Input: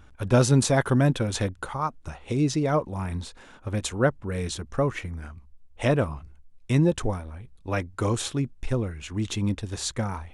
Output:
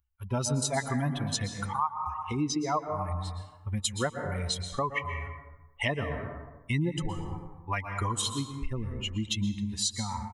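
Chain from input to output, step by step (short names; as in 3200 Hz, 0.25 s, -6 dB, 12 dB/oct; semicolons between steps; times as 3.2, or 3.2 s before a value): per-bin expansion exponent 2; comb 1 ms, depth 60%; plate-style reverb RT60 1.1 s, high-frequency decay 0.45×, pre-delay 0.105 s, DRR 8.5 dB; AGC gain up to 9 dB; low shelf 310 Hz -10.5 dB; compressor 3:1, threshold -33 dBFS, peak gain reduction 14.5 dB; gain +3.5 dB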